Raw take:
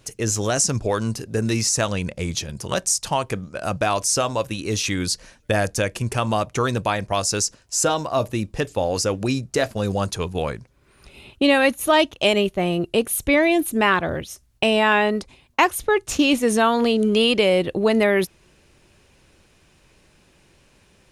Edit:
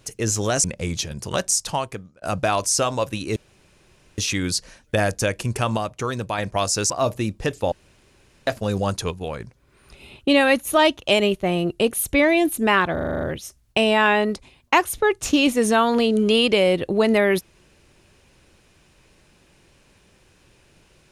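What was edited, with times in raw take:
0:00.64–0:02.02: remove
0:03.02–0:03.60: fade out
0:04.74: splice in room tone 0.82 s
0:06.33–0:06.94: clip gain −4.5 dB
0:07.46–0:08.04: remove
0:08.86–0:09.61: fill with room tone
0:10.25–0:10.54: clip gain −5 dB
0:14.07: stutter 0.04 s, 8 plays

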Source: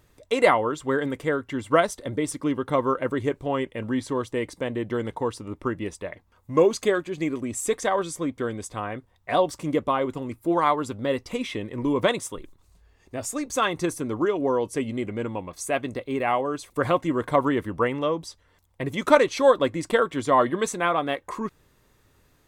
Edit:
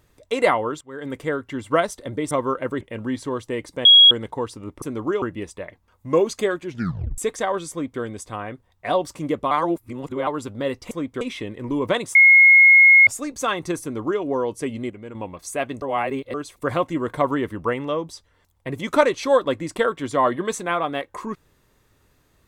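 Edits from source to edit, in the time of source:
0:00.81–0:01.13: fade in quadratic, from −20 dB
0:02.31–0:02.71: remove
0:03.21–0:03.65: remove
0:04.69–0:04.95: beep over 3,310 Hz −6.5 dBFS
0:07.09: tape stop 0.53 s
0:08.15–0:08.45: duplicate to 0:11.35
0:09.95–0:10.71: reverse
0:12.29–0:13.21: beep over 2,160 Hz −7.5 dBFS
0:13.96–0:14.36: duplicate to 0:05.66
0:15.04–0:15.29: clip gain −8 dB
0:15.96–0:16.48: reverse

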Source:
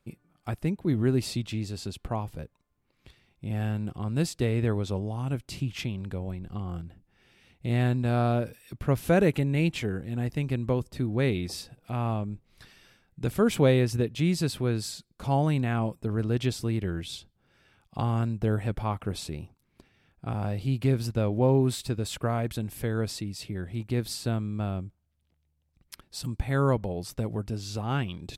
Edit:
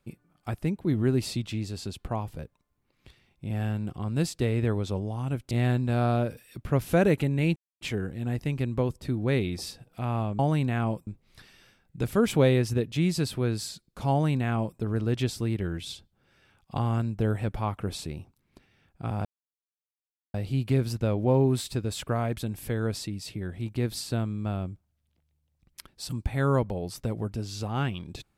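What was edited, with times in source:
0:05.51–0:07.67: remove
0:09.72: splice in silence 0.25 s
0:15.34–0:16.02: duplicate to 0:12.30
0:20.48: splice in silence 1.09 s

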